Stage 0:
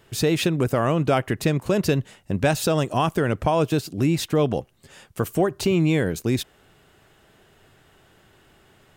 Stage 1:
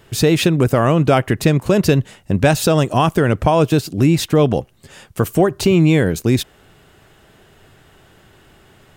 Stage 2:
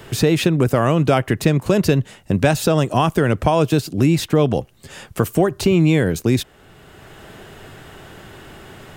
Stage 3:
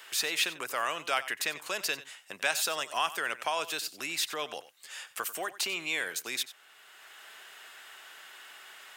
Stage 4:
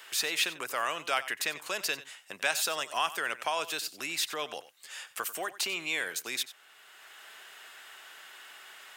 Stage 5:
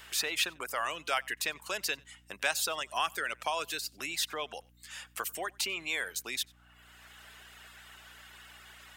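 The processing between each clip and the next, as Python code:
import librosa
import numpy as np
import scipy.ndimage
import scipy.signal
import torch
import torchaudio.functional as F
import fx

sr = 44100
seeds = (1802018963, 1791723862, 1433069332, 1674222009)

y1 = fx.low_shelf(x, sr, hz=190.0, db=3.0)
y1 = F.gain(torch.from_numpy(y1), 6.0).numpy()
y2 = fx.band_squash(y1, sr, depth_pct=40)
y2 = F.gain(torch.from_numpy(y2), -2.0).numpy()
y3 = scipy.signal.sosfilt(scipy.signal.butter(2, 1400.0, 'highpass', fs=sr, output='sos'), y2)
y3 = y3 + 10.0 ** (-16.0 / 20.0) * np.pad(y3, (int(92 * sr / 1000.0), 0))[:len(y3)]
y3 = F.gain(torch.from_numpy(y3), -3.5).numpy()
y4 = y3
y5 = fx.dereverb_blind(y4, sr, rt60_s=0.77)
y5 = fx.add_hum(y5, sr, base_hz=60, snr_db=26)
y5 = F.gain(torch.from_numpy(y5), -1.0).numpy()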